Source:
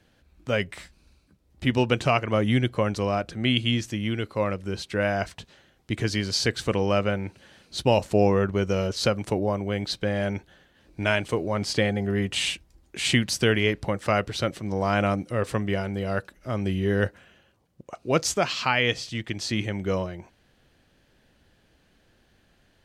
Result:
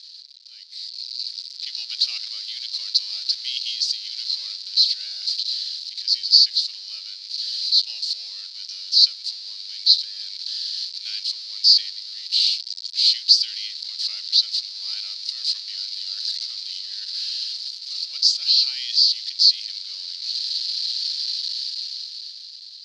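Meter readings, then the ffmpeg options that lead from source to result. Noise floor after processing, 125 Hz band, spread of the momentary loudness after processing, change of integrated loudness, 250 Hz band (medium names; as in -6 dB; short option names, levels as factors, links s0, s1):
-40 dBFS, under -40 dB, 15 LU, +5.0 dB, under -40 dB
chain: -af "aeval=exprs='val(0)+0.5*0.0794*sgn(val(0))':c=same,asuperpass=centerf=4500:order=4:qfactor=4.8,dynaudnorm=f=150:g=17:m=6.68"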